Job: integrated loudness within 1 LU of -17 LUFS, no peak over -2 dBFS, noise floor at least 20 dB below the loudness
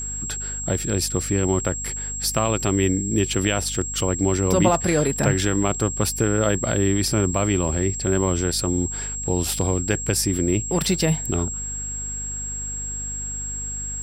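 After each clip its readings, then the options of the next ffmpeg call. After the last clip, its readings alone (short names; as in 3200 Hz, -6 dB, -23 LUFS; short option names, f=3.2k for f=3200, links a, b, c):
hum 50 Hz; harmonics up to 250 Hz; hum level -32 dBFS; steady tone 7600 Hz; tone level -28 dBFS; loudness -22.5 LUFS; peak -4.5 dBFS; loudness target -17.0 LUFS
-> -af "bandreject=f=50:t=h:w=4,bandreject=f=100:t=h:w=4,bandreject=f=150:t=h:w=4,bandreject=f=200:t=h:w=4,bandreject=f=250:t=h:w=4"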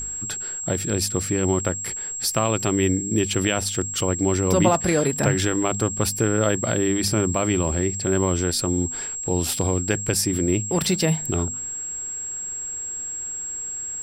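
hum none; steady tone 7600 Hz; tone level -28 dBFS
-> -af "bandreject=f=7.6k:w=30"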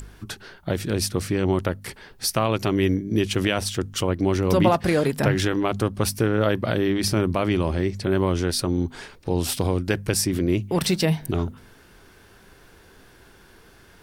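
steady tone none; loudness -23.5 LUFS; peak -6.0 dBFS; loudness target -17.0 LUFS
-> -af "volume=6.5dB,alimiter=limit=-2dB:level=0:latency=1"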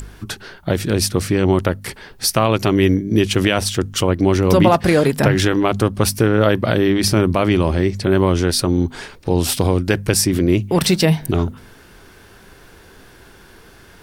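loudness -17.0 LUFS; peak -2.0 dBFS; noise floor -45 dBFS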